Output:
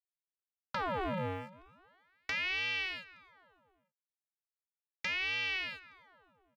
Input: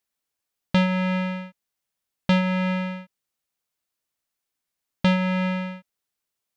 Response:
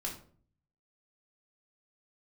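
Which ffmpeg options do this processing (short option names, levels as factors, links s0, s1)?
-filter_complex "[0:a]afftfilt=real='re*gte(hypot(re,im),0.0112)':imag='im*gte(hypot(re,im),0.0112)':win_size=1024:overlap=0.75,bass=f=250:g=-6,treble=f=4000:g=-6,acrossover=split=940[s0][s1];[s0]alimiter=level_in=1.19:limit=0.0631:level=0:latency=1:release=39,volume=0.841[s2];[s1]acompressor=threshold=0.0141:ratio=20[s3];[s2][s3]amix=inputs=2:normalize=0,aeval=exprs='sgn(val(0))*max(abs(val(0))-0.00224,0)':c=same,aecho=1:1:290|580|870:0.0944|0.0378|0.0151,aeval=exprs='val(0)*sin(2*PI*1400*n/s+1400*0.8/0.37*sin(2*PI*0.37*n/s))':c=same,volume=0.891"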